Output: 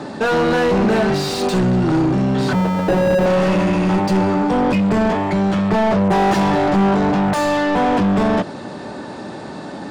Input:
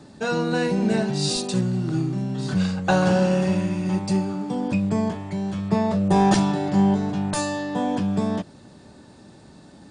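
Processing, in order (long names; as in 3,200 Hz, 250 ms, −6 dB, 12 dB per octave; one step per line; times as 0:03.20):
0:02.53–0:03.26: sample-rate reduction 1,100 Hz, jitter 0%
mid-hump overdrive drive 33 dB, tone 1,100 Hz, clips at −6.5 dBFS
level −1 dB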